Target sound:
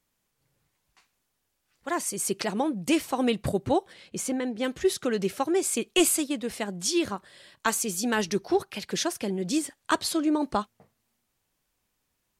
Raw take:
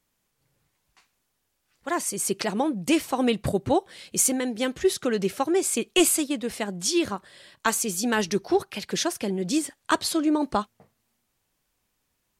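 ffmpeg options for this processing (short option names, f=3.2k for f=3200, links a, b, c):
-filter_complex "[0:a]asplit=3[a][b][c];[a]afade=t=out:st=3.92:d=0.02[d];[b]lowpass=f=2.4k:p=1,afade=t=in:st=3.92:d=0.02,afade=t=out:st=4.63:d=0.02[e];[c]afade=t=in:st=4.63:d=0.02[f];[d][e][f]amix=inputs=3:normalize=0,volume=-2dB"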